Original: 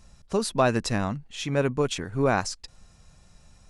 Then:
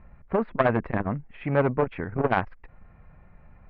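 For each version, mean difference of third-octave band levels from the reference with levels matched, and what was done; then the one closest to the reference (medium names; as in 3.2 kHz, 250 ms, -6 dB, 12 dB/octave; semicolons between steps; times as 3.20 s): 7.0 dB: elliptic low-pass 2.2 kHz, stop band 70 dB; transformer saturation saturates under 760 Hz; trim +4.5 dB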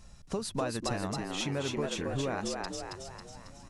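10.0 dB: compression, threshold -31 dBFS, peak gain reduction 14 dB; on a send: frequency-shifting echo 273 ms, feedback 52%, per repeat +86 Hz, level -3.5 dB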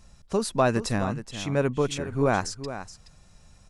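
3.0 dB: dynamic bell 3.4 kHz, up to -3 dB, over -39 dBFS, Q 0.79; on a send: delay 423 ms -12 dB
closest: third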